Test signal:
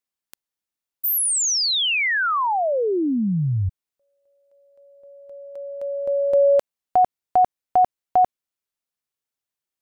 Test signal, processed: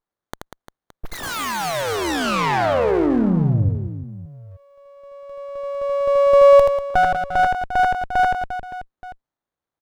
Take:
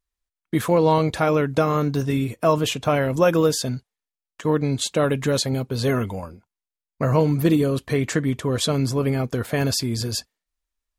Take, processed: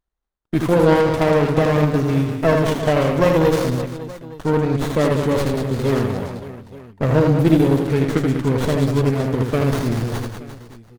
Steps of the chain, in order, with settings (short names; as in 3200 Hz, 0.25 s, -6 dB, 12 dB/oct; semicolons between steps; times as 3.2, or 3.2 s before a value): reverse bouncing-ball echo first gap 80 ms, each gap 1.4×, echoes 5; running maximum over 17 samples; gain +2 dB